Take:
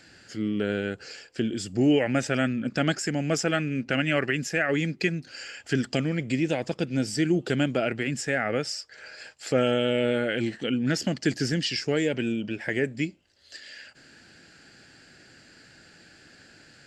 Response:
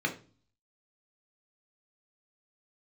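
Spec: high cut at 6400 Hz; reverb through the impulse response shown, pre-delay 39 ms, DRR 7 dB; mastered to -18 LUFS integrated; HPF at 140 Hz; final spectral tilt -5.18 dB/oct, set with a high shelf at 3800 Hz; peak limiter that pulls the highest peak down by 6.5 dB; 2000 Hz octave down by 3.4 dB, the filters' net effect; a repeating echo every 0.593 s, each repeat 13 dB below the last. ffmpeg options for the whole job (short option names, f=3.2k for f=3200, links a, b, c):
-filter_complex "[0:a]highpass=140,lowpass=6.4k,equalizer=f=2k:t=o:g=-3.5,highshelf=f=3.8k:g=-3.5,alimiter=limit=-17.5dB:level=0:latency=1,aecho=1:1:593|1186|1779:0.224|0.0493|0.0108,asplit=2[a][b];[1:a]atrim=start_sample=2205,adelay=39[c];[b][c]afir=irnorm=-1:irlink=0,volume=-15dB[d];[a][d]amix=inputs=2:normalize=0,volume=10dB"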